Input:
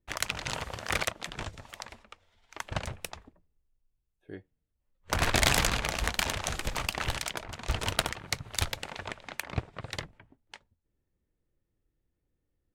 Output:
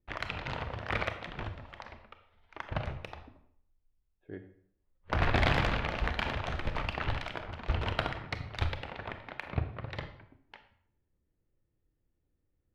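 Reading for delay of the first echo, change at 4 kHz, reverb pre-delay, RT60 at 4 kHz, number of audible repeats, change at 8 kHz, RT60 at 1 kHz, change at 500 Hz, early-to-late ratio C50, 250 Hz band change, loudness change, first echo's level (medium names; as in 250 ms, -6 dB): no echo, -8.0 dB, 26 ms, 0.50 s, no echo, -24.5 dB, 0.65 s, -0.5 dB, 10.5 dB, +0.5 dB, -3.0 dB, no echo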